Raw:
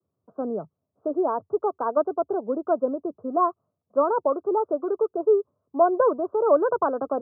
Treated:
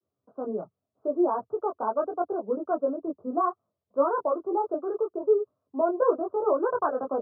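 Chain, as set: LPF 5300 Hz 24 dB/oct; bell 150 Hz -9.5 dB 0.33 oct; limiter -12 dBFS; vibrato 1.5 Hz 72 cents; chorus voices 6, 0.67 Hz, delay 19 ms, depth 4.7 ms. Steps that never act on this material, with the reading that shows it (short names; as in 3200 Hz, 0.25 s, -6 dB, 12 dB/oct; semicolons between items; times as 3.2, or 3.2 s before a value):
LPF 5300 Hz: input band ends at 1500 Hz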